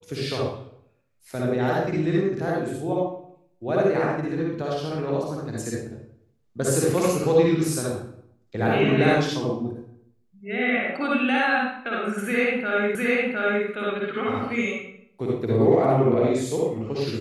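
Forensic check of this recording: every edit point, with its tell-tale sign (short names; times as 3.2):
12.95 repeat of the last 0.71 s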